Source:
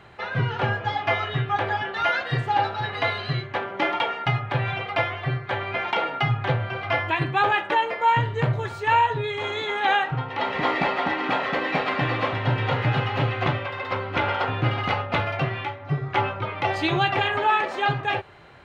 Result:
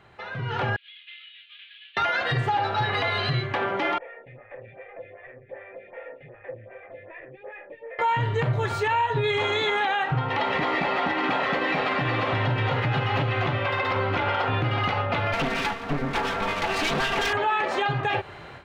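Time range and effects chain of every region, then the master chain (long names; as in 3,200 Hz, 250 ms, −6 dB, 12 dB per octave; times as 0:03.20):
0:00.76–0:01.97: variable-slope delta modulation 16 kbit/s + inverse Chebyshev high-pass filter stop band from 890 Hz, stop band 70 dB
0:03.98–0:07.99: tube saturation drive 31 dB, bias 0.6 + formant resonators in series e + phaser with staggered stages 2.6 Hz
0:15.33–0:17.33: lower of the sound and its delayed copy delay 4.4 ms + single-tap delay 167 ms −17 dB + highs frequency-modulated by the lows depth 0.41 ms
whole clip: downward compressor, threshold −26 dBFS; brickwall limiter −23.5 dBFS; automatic gain control gain up to 13.5 dB; level −6 dB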